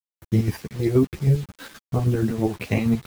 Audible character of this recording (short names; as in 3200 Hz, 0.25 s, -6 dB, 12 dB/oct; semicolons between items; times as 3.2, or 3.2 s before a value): chopped level 6.3 Hz, depth 60%, duty 50%; a quantiser's noise floor 8-bit, dither none; a shimmering, thickened sound